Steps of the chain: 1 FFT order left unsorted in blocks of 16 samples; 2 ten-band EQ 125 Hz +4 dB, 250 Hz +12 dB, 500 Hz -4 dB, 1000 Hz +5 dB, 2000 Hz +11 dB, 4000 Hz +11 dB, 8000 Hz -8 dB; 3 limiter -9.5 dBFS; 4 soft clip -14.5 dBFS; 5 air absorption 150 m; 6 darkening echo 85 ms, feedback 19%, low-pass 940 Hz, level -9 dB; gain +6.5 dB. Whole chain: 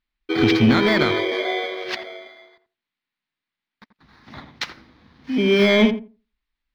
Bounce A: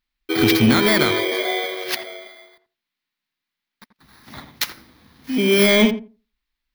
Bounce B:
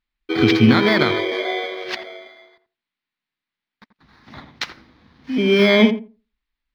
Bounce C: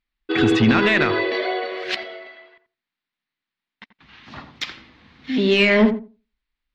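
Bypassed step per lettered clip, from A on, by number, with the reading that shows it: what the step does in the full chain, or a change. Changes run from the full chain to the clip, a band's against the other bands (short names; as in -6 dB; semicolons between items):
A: 5, 4 kHz band +3.0 dB; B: 4, distortion -16 dB; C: 1, 2 kHz band +3.0 dB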